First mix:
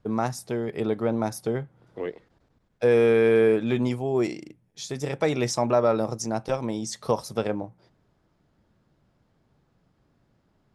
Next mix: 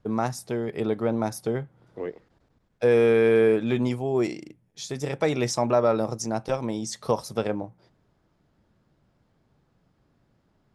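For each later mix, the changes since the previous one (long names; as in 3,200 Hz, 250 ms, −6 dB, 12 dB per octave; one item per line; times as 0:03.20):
second voice: add high-frequency loss of the air 410 metres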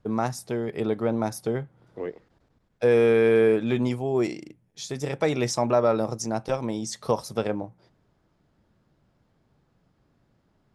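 nothing changed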